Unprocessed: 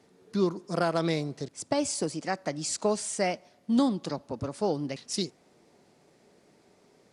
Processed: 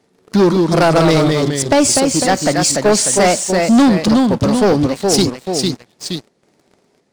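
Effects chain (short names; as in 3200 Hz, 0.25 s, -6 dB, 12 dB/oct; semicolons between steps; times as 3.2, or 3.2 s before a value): chopper 1.4 Hz, depth 65%, duty 80%; echoes that change speed 0.145 s, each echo -1 st, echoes 2, each echo -6 dB; sample leveller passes 3; gain +8 dB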